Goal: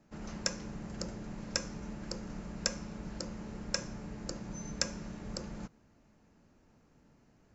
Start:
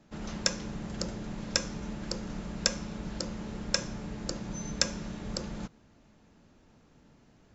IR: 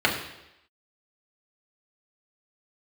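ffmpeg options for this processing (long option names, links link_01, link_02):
-af "equalizer=frequency=3500:width_type=o:width=0.5:gain=-7,volume=-4.5dB"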